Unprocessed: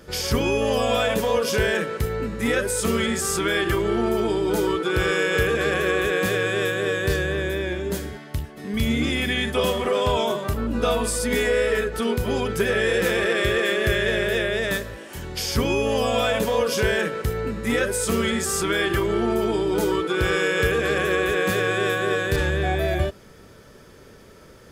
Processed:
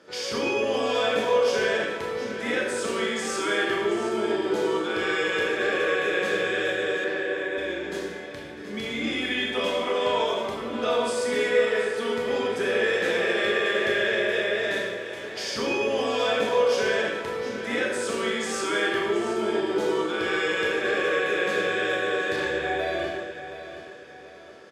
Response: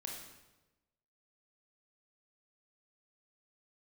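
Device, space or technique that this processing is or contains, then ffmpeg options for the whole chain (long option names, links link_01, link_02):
supermarket ceiling speaker: -filter_complex "[0:a]highpass=300,lowpass=6000,bandreject=frequency=371.2:width_type=h:width=4,bandreject=frequency=742.4:width_type=h:width=4[link_01];[1:a]atrim=start_sample=2205[link_02];[link_01][link_02]afir=irnorm=-1:irlink=0,asettb=1/sr,asplit=3[link_03][link_04][link_05];[link_03]atrim=end=7.044[link_06];[link_04]atrim=start=7.04:end=7.58,asetpts=PTS-STARTPTS,afade=type=in:duration=0.004:curve=qsin,afade=type=out:start_time=0.536:duration=0.004:curve=qsin,acrossover=split=200 3100:gain=0.0891 1 0.0794[link_07][link_08][link_09];[link_07][link_08][link_09]amix=inputs=3:normalize=0[link_10];[link_05]atrim=start=7.576[link_11];[link_06][link_10]acrossfade=duration=0.004:curve1=hsin:curve2=qsin[link_12];[link_12][link_11]acrossfade=duration=0.004:curve1=qsin:curve2=hsin,aecho=1:1:725|1450|2175|2900:0.251|0.1|0.0402|0.0161"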